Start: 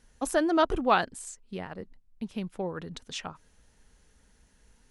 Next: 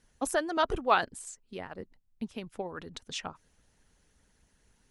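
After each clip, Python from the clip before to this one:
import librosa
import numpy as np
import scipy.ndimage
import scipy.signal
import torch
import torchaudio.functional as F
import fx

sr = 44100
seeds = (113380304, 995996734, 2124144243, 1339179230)

y = fx.hpss(x, sr, part='harmonic', gain_db=-10)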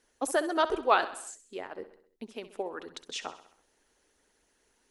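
y = fx.low_shelf_res(x, sr, hz=230.0, db=-13.0, q=1.5)
y = fx.echo_feedback(y, sr, ms=65, feedback_pct=54, wet_db=-14.0)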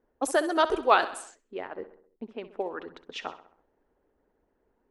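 y = fx.env_lowpass(x, sr, base_hz=820.0, full_db=-27.5)
y = y * 10.0 ** (3.0 / 20.0)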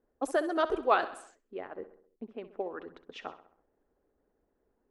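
y = fx.high_shelf(x, sr, hz=2500.0, db=-9.5)
y = fx.notch(y, sr, hz=920.0, q=13.0)
y = y * 10.0 ** (-3.0 / 20.0)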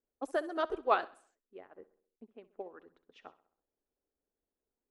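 y = fx.upward_expand(x, sr, threshold_db=-49.0, expansion=1.5)
y = y * 10.0 ** (-2.0 / 20.0)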